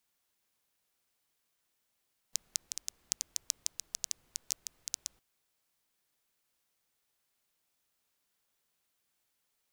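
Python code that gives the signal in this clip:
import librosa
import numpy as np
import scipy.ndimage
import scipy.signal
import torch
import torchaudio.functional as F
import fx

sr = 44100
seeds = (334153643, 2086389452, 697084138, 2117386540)

y = fx.rain(sr, seeds[0], length_s=2.86, drops_per_s=7.4, hz=6200.0, bed_db=-29)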